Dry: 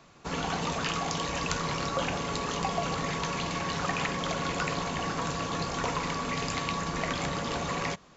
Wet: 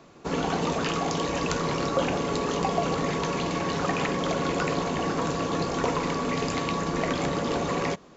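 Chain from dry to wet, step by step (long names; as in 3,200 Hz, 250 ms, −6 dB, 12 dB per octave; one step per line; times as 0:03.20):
parametric band 360 Hz +9.5 dB 1.9 octaves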